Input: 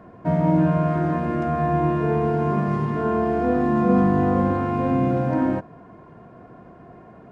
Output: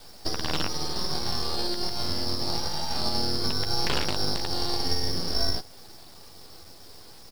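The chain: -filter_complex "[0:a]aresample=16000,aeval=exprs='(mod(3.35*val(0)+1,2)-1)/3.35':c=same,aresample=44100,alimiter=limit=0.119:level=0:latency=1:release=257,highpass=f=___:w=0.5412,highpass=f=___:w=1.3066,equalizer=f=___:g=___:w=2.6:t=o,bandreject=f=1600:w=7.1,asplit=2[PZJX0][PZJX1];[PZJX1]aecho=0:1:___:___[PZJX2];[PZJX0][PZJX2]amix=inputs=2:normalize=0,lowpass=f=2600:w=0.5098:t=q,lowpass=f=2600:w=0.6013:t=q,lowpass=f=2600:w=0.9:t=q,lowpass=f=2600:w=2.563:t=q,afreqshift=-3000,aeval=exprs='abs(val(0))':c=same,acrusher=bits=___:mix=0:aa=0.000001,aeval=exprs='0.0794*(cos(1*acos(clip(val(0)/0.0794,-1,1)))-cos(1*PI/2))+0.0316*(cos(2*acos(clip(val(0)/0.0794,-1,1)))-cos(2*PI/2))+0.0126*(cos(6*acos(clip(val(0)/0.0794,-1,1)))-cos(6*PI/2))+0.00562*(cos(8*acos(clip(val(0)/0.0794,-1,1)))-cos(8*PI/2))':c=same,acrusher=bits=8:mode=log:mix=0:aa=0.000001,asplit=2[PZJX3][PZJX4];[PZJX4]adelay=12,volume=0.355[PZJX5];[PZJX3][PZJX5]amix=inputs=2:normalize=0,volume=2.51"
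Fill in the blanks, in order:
230, 230, 550, -12, 130, 0.0668, 9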